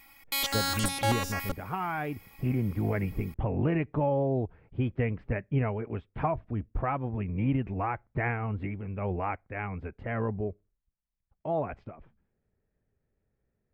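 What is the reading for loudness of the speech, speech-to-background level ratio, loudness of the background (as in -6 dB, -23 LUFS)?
-32.0 LUFS, -2.0 dB, -30.0 LUFS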